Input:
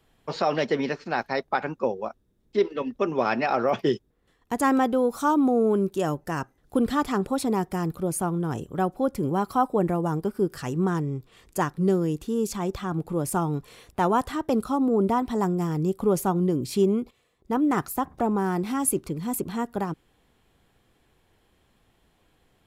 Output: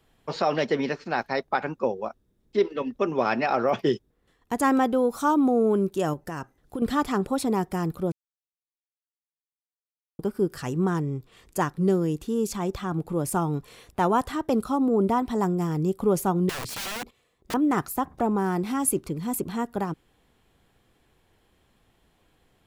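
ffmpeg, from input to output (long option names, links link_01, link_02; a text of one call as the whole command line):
ffmpeg -i in.wav -filter_complex "[0:a]asettb=1/sr,asplit=3[link_01][link_02][link_03];[link_01]atrim=end=6.134[link_04];[link_02]atrim=start=6.13:end=6.82,asetpts=PTS-STARTPTS,afade=type=in:duration=0.004:curve=qsin,afade=type=out:start_time=0.686:duration=0.004:curve=qsin,acompressor=threshold=-28dB:ratio=5:attack=3.2:release=140:knee=1:detection=peak[link_05];[link_03]atrim=start=6.816[link_06];[link_04][link_05]acrossfade=duration=0.004:curve1=hsin:curve2=qsin[link_07];[link_07][link_06]acrossfade=duration=0.004:curve1=qsin:curve2=hsin,asettb=1/sr,asplit=3[link_08][link_09][link_10];[link_08]atrim=end=16.494[link_11];[link_09]atrim=start=16.49:end=17.54,asetpts=PTS-STARTPTS,afade=type=in:duration=0.004:curve=qsin,afade=type=out:start_time=1.046:duration=0.004:curve=qsin,aeval=exprs='(mod(25.1*val(0)+1,2)-1)/25.1':channel_layout=same[link_12];[link_10]atrim=start=17.536[link_13];[link_11][link_12]acrossfade=duration=0.004:curve1=hsin:curve2=qsin[link_14];[link_14][link_13]acrossfade=duration=0.004:curve1=qsin:curve2=hsin,asplit=3[link_15][link_16][link_17];[link_15]atrim=end=8.12,asetpts=PTS-STARTPTS,afade=type=out:start_time=8.116:duration=0.004:curve=hsin[link_18];[link_16]atrim=start=8.12:end=10.19,asetpts=PTS-STARTPTS,volume=0[link_19];[link_17]atrim=start=10.19,asetpts=PTS-STARTPTS,afade=type=in:duration=0.004:curve=hsin[link_20];[link_18][link_19][link_20]concat=n=3:v=0:a=1" out.wav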